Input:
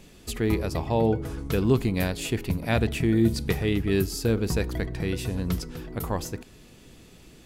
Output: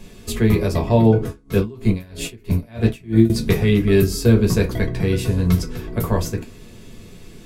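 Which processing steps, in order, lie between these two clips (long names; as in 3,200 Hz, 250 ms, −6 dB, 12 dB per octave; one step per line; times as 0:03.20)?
convolution reverb RT60 0.20 s, pre-delay 4 ms, DRR 0.5 dB
0:01.26–0:03.30: tremolo with a sine in dB 3.1 Hz, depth 28 dB
level +3 dB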